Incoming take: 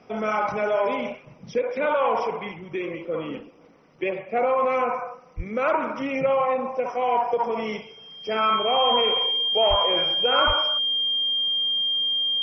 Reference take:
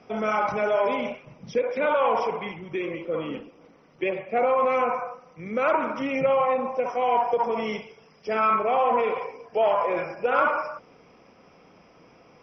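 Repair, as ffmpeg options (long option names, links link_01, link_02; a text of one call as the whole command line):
ffmpeg -i in.wav -filter_complex "[0:a]bandreject=frequency=3200:width=30,asplit=3[link_01][link_02][link_03];[link_01]afade=type=out:start_time=5.36:duration=0.02[link_04];[link_02]highpass=frequency=140:width=0.5412,highpass=frequency=140:width=1.3066,afade=type=in:start_time=5.36:duration=0.02,afade=type=out:start_time=5.48:duration=0.02[link_05];[link_03]afade=type=in:start_time=5.48:duration=0.02[link_06];[link_04][link_05][link_06]amix=inputs=3:normalize=0,asplit=3[link_07][link_08][link_09];[link_07]afade=type=out:start_time=9.69:duration=0.02[link_10];[link_08]highpass=frequency=140:width=0.5412,highpass=frequency=140:width=1.3066,afade=type=in:start_time=9.69:duration=0.02,afade=type=out:start_time=9.81:duration=0.02[link_11];[link_09]afade=type=in:start_time=9.81:duration=0.02[link_12];[link_10][link_11][link_12]amix=inputs=3:normalize=0,asplit=3[link_13][link_14][link_15];[link_13]afade=type=out:start_time=10.46:duration=0.02[link_16];[link_14]highpass=frequency=140:width=0.5412,highpass=frequency=140:width=1.3066,afade=type=in:start_time=10.46:duration=0.02,afade=type=out:start_time=10.58:duration=0.02[link_17];[link_15]afade=type=in:start_time=10.58:duration=0.02[link_18];[link_16][link_17][link_18]amix=inputs=3:normalize=0" out.wav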